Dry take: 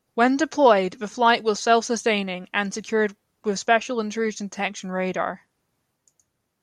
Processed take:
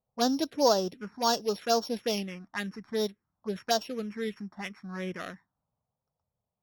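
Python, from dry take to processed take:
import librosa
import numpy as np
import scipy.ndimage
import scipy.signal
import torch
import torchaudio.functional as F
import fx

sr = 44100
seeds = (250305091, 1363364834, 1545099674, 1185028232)

y = np.r_[np.sort(x[:len(x) // 8 * 8].reshape(-1, 8), axis=1).ravel(), x[len(x) // 8 * 8:]]
y = fx.env_lowpass(y, sr, base_hz=950.0, full_db=-16.5)
y = fx.env_phaser(y, sr, low_hz=320.0, high_hz=2200.0, full_db=-15.5)
y = F.gain(torch.from_numpy(y), -6.5).numpy()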